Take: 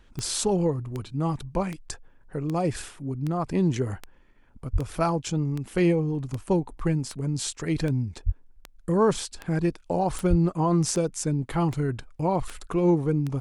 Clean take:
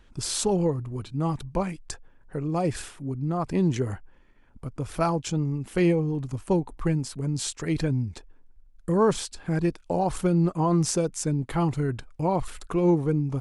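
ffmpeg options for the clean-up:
-filter_complex "[0:a]adeclick=t=4,asplit=3[a][b][c];[a]afade=t=out:st=4.72:d=0.02[d];[b]highpass=f=140:w=0.5412,highpass=f=140:w=1.3066,afade=t=in:st=4.72:d=0.02,afade=t=out:st=4.84:d=0.02[e];[c]afade=t=in:st=4.84:d=0.02[f];[d][e][f]amix=inputs=3:normalize=0,asplit=3[g][h][i];[g]afade=t=out:st=8.25:d=0.02[j];[h]highpass=f=140:w=0.5412,highpass=f=140:w=1.3066,afade=t=in:st=8.25:d=0.02,afade=t=out:st=8.37:d=0.02[k];[i]afade=t=in:st=8.37:d=0.02[l];[j][k][l]amix=inputs=3:normalize=0,asplit=3[m][n][o];[m]afade=t=out:st=10.29:d=0.02[p];[n]highpass=f=140:w=0.5412,highpass=f=140:w=1.3066,afade=t=in:st=10.29:d=0.02,afade=t=out:st=10.41:d=0.02[q];[o]afade=t=in:st=10.41:d=0.02[r];[p][q][r]amix=inputs=3:normalize=0"

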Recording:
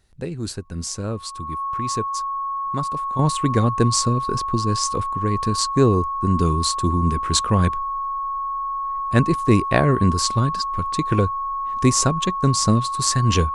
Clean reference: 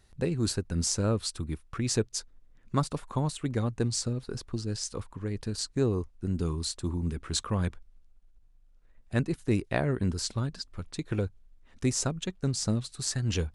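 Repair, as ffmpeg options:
-af "bandreject=f=1.1k:w=30,asetnsamples=n=441:p=0,asendcmd='3.19 volume volume -10.5dB',volume=0dB"

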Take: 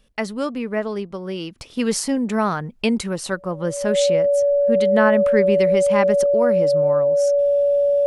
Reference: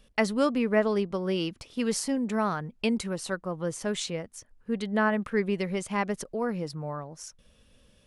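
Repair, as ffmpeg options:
-af "bandreject=f=570:w=30,asetnsamples=n=441:p=0,asendcmd='1.58 volume volume -7dB',volume=0dB"

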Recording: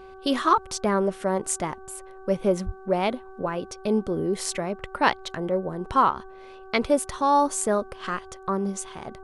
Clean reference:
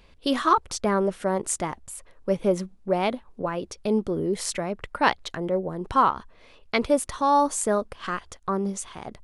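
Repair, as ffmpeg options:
-filter_complex "[0:a]bandreject=f=381.4:t=h:w=4,bandreject=f=762.8:t=h:w=4,bandreject=f=1.1442k:t=h:w=4,bandreject=f=1.5256k:t=h:w=4,asplit=3[a][b][c];[a]afade=t=out:st=2.65:d=0.02[d];[b]highpass=f=140:w=0.5412,highpass=f=140:w=1.3066,afade=t=in:st=2.65:d=0.02,afade=t=out:st=2.77:d=0.02[e];[c]afade=t=in:st=2.77:d=0.02[f];[d][e][f]amix=inputs=3:normalize=0"

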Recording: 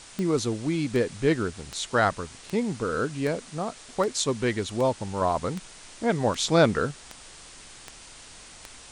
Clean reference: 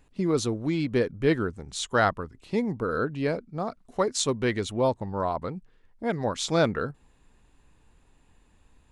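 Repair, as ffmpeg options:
-af "adeclick=t=4,afwtdn=0.0063,asetnsamples=n=441:p=0,asendcmd='5.21 volume volume -3.5dB',volume=0dB"

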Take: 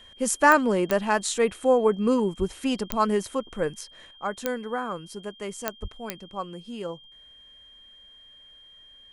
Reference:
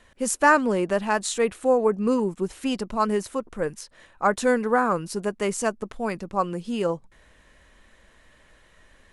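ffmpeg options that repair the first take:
-filter_complex "[0:a]adeclick=t=4,bandreject=f=3.2k:w=30,asplit=3[a][b][c];[a]afade=t=out:st=2.38:d=0.02[d];[b]highpass=f=140:w=0.5412,highpass=f=140:w=1.3066,afade=t=in:st=2.38:d=0.02,afade=t=out:st=2.5:d=0.02[e];[c]afade=t=in:st=2.5:d=0.02[f];[d][e][f]amix=inputs=3:normalize=0,asplit=3[g][h][i];[g]afade=t=out:st=5.81:d=0.02[j];[h]highpass=f=140:w=0.5412,highpass=f=140:w=1.3066,afade=t=in:st=5.81:d=0.02,afade=t=out:st=5.93:d=0.02[k];[i]afade=t=in:st=5.93:d=0.02[l];[j][k][l]amix=inputs=3:normalize=0,asetnsamples=n=441:p=0,asendcmd='4.11 volume volume 9dB',volume=0dB"

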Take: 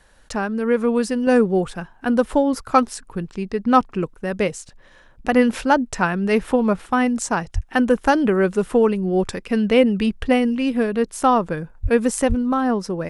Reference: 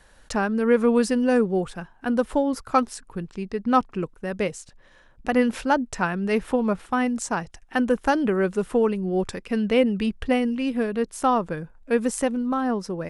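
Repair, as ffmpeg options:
-filter_complex "[0:a]asplit=3[a][b][c];[a]afade=t=out:st=7.54:d=0.02[d];[b]highpass=f=140:w=0.5412,highpass=f=140:w=1.3066,afade=t=in:st=7.54:d=0.02,afade=t=out:st=7.66:d=0.02[e];[c]afade=t=in:st=7.66:d=0.02[f];[d][e][f]amix=inputs=3:normalize=0,asplit=3[g][h][i];[g]afade=t=out:st=11.82:d=0.02[j];[h]highpass=f=140:w=0.5412,highpass=f=140:w=1.3066,afade=t=in:st=11.82:d=0.02,afade=t=out:st=11.94:d=0.02[k];[i]afade=t=in:st=11.94:d=0.02[l];[j][k][l]amix=inputs=3:normalize=0,asplit=3[m][n][o];[m]afade=t=out:st=12.28:d=0.02[p];[n]highpass=f=140:w=0.5412,highpass=f=140:w=1.3066,afade=t=in:st=12.28:d=0.02,afade=t=out:st=12.4:d=0.02[q];[o]afade=t=in:st=12.4:d=0.02[r];[p][q][r]amix=inputs=3:normalize=0,asetnsamples=n=441:p=0,asendcmd='1.27 volume volume -4.5dB',volume=0dB"

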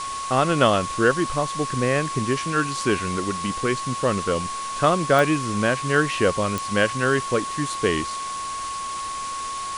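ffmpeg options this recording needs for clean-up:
-af "adeclick=t=4,bandreject=f=1.1k:w=30,afwtdn=0.02"

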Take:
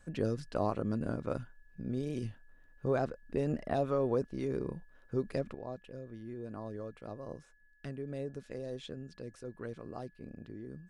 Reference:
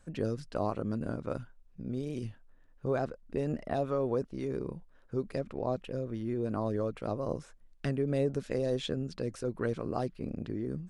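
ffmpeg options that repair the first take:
-af "bandreject=f=1.7k:w=30,asetnsamples=n=441:p=0,asendcmd='5.55 volume volume 10dB',volume=0dB"

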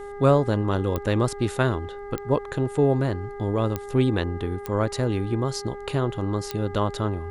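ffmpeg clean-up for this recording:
-af "adeclick=t=4,bandreject=f=405.2:t=h:w=4,bandreject=f=810.4:t=h:w=4,bandreject=f=1.2156k:t=h:w=4,bandreject=f=1.6208k:t=h:w=4,bandreject=f=2.026k:t=h:w=4,agate=range=-21dB:threshold=-29dB"

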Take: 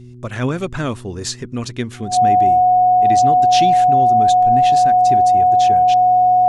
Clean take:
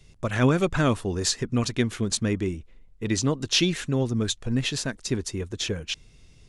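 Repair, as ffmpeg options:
-af "bandreject=f=122.6:t=h:w=4,bandreject=f=245.2:t=h:w=4,bandreject=f=367.8:t=h:w=4,bandreject=f=730:w=30"

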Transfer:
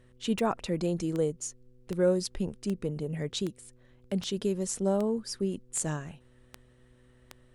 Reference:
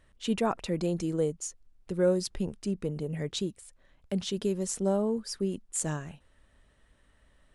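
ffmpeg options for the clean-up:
-af "adeclick=t=4,bandreject=f=124.4:t=h:w=4,bandreject=f=248.8:t=h:w=4,bandreject=f=373.2:t=h:w=4,bandreject=f=497.6:t=h:w=4"

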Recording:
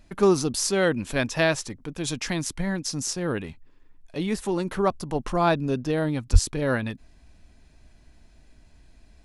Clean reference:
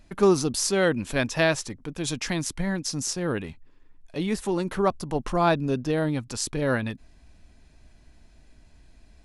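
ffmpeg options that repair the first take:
-filter_complex "[0:a]asplit=3[a][b][c];[a]afade=t=out:st=6.32:d=0.02[d];[b]highpass=f=140:w=0.5412,highpass=f=140:w=1.3066,afade=t=in:st=6.32:d=0.02,afade=t=out:st=6.44:d=0.02[e];[c]afade=t=in:st=6.44:d=0.02[f];[d][e][f]amix=inputs=3:normalize=0"

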